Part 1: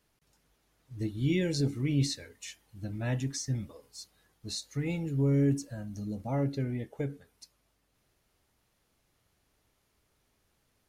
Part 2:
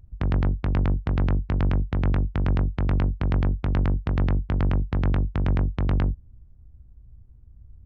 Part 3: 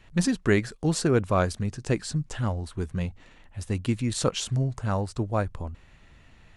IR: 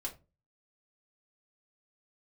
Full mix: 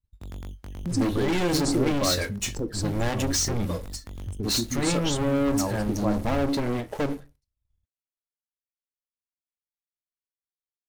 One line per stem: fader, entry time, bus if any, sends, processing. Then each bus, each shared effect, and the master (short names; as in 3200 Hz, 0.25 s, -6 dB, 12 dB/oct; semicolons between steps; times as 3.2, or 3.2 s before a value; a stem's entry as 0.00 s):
-0.5 dB, 0.00 s, no bus, send -7.5 dB, compressor, threshold -28 dBFS, peak gain reduction 6.5 dB; sample leveller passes 5; ending taper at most 280 dB/s
-9.0 dB, 0.00 s, bus A, no send, decimation with a swept rate 11×, swing 60% 0.27 Hz; auto duck -6 dB, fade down 0.20 s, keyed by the first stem
+0.5 dB, 0.70 s, bus A, send -12 dB, spectral gate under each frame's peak -15 dB strong; sample leveller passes 1
bus A: 0.0 dB, compressor, threshold -28 dBFS, peak gain reduction 12 dB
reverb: on, pre-delay 3 ms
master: bell 140 Hz -8 dB 0.44 oct; expander -46 dBFS